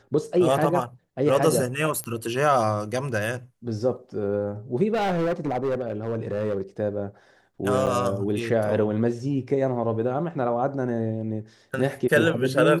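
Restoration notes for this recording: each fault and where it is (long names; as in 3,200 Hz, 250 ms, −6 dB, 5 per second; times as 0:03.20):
0:02.04: click −18 dBFS
0:04.93–0:06.61: clipping −21 dBFS
0:07.86–0:07.87: drop-out 7.8 ms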